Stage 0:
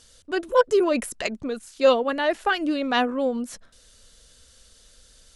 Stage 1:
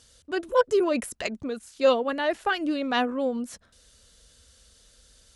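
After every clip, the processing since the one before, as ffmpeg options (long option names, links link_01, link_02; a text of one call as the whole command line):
ffmpeg -i in.wav -af "highpass=57,lowshelf=frequency=78:gain=9.5,volume=-3dB" out.wav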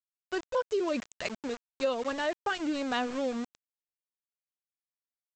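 ffmpeg -i in.wav -af "aresample=16000,aeval=exprs='val(0)*gte(abs(val(0)),0.0237)':channel_layout=same,aresample=44100,acompressor=threshold=-22dB:ratio=6,volume=-3.5dB" out.wav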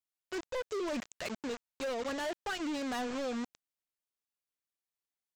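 ffmpeg -i in.wav -af "volume=33dB,asoftclip=hard,volume=-33dB" out.wav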